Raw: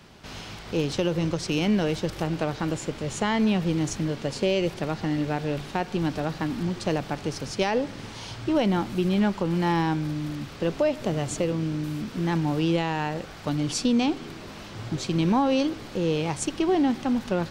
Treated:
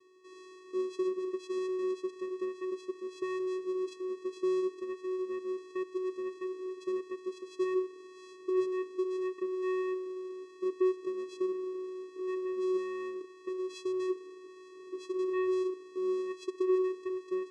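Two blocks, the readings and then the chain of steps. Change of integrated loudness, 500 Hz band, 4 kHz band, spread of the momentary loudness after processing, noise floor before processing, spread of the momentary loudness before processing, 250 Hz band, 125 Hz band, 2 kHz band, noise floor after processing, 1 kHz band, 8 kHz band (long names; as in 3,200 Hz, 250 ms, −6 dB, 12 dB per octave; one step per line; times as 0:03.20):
−8.5 dB, −3.5 dB, −20.0 dB, 10 LU, −41 dBFS, 8 LU, −11.0 dB, below −40 dB, −15.0 dB, −53 dBFS, −15.0 dB, below −20 dB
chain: channel vocoder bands 4, square 371 Hz
level −8 dB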